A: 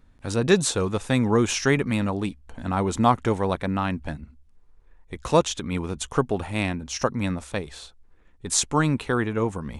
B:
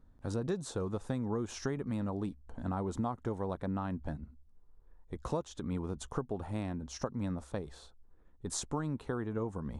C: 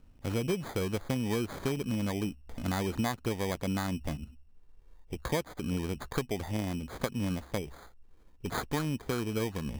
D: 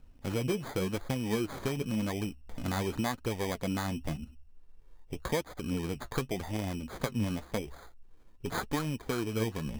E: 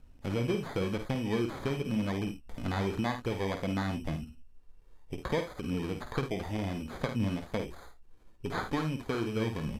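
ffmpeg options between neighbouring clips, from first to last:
ffmpeg -i in.wav -af "highshelf=frequency=3400:gain=-10,acompressor=threshold=-26dB:ratio=6,equalizer=frequency=2400:width=1.4:gain=-11,volume=-5dB" out.wav
ffmpeg -i in.wav -af "acrusher=samples=16:mix=1:aa=0.000001,volume=3.5dB" out.wav
ffmpeg -i in.wav -af "flanger=delay=1.1:depth=8.3:regen=52:speed=0.9:shape=triangular,volume=4dB" out.wav
ffmpeg -i in.wav -filter_complex "[0:a]aecho=1:1:51|76:0.398|0.2,acrossover=split=4600[link_01][link_02];[link_02]acompressor=threshold=-55dB:ratio=4:attack=1:release=60[link_03];[link_01][link_03]amix=inputs=2:normalize=0,aresample=32000,aresample=44100" out.wav

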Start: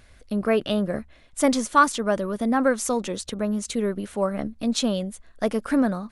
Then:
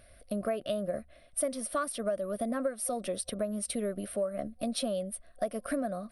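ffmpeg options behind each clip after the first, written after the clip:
ffmpeg -i in.wav -af "superequalizer=8b=3.16:9b=0.316:15b=0.282:16b=3.55,acompressor=threshold=-23dB:ratio=6,volume=-6dB" out.wav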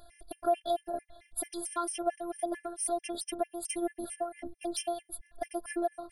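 ffmpeg -i in.wav -af "asoftclip=type=tanh:threshold=-21.5dB,afftfilt=real='hypot(re,im)*cos(PI*b)':imag='0':win_size=512:overlap=0.75,afftfilt=real='re*gt(sin(2*PI*4.5*pts/sr)*(1-2*mod(floor(b*sr/1024/1700),2)),0)':imag='im*gt(sin(2*PI*4.5*pts/sr)*(1-2*mod(floor(b*sr/1024/1700),2)),0)':win_size=1024:overlap=0.75,volume=7dB" out.wav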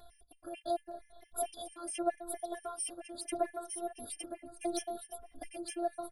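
ffmpeg -i in.wav -filter_complex "[0:a]tremolo=f=1.5:d=0.8,asplit=2[link_01][link_02];[link_02]aecho=0:1:913|1826|2739:0.631|0.114|0.0204[link_03];[link_01][link_03]amix=inputs=2:normalize=0,asplit=2[link_04][link_05];[link_05]adelay=2.3,afreqshift=0.8[link_06];[link_04][link_06]amix=inputs=2:normalize=1,volume=1.5dB" out.wav

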